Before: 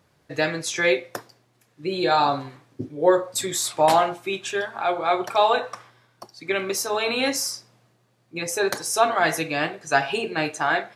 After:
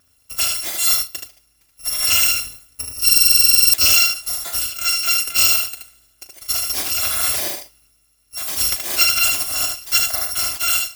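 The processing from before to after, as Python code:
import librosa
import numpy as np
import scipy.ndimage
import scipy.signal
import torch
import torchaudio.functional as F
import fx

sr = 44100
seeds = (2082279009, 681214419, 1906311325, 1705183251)

y = fx.bit_reversed(x, sr, seeds[0], block=256)
y = fx.room_early_taps(y, sr, ms=(38, 76), db=(-12.5, -4.5))
y = fx.buffer_glitch(y, sr, at_s=(3.04,), block=2048, repeats=14)
y = F.gain(torch.from_numpy(y), 2.5).numpy()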